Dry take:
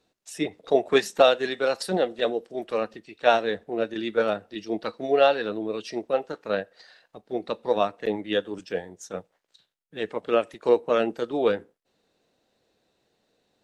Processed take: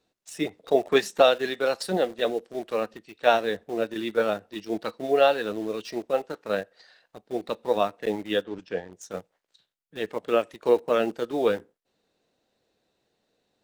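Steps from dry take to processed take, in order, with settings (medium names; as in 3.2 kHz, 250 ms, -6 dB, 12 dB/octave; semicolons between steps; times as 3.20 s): in parallel at -10 dB: bit crusher 6-bit; 8.43–8.93 s: on the sum: distance through air 140 m; trim -3 dB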